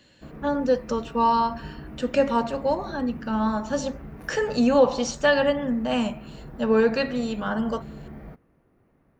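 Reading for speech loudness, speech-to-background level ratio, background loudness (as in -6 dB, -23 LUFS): -24.5 LUFS, 17.0 dB, -41.5 LUFS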